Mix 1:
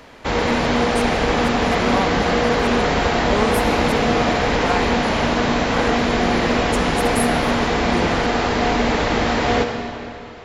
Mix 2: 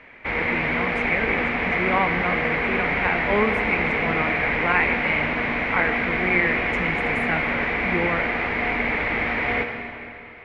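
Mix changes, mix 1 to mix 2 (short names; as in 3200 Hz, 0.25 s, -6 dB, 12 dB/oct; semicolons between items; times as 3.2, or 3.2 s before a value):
background -9.5 dB; master: add synth low-pass 2200 Hz, resonance Q 6.6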